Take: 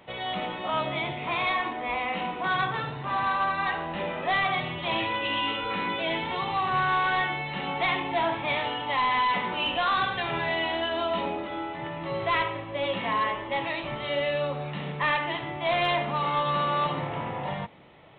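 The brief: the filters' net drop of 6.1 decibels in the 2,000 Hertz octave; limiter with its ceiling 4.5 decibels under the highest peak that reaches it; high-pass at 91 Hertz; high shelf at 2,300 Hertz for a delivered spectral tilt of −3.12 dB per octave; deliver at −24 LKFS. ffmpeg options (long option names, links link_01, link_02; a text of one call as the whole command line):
ffmpeg -i in.wav -af "highpass=91,equalizer=frequency=2000:width_type=o:gain=-5,highshelf=frequency=2300:gain=-5,volume=8dB,alimiter=limit=-15.5dB:level=0:latency=1" out.wav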